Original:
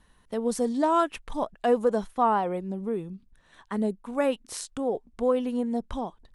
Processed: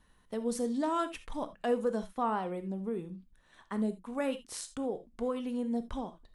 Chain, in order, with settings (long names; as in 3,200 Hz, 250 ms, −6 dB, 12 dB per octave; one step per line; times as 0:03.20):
dynamic equaliser 750 Hz, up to −5 dB, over −33 dBFS, Q 0.85
reverb whose tail is shaped and stops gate 100 ms flat, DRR 10 dB
level −5 dB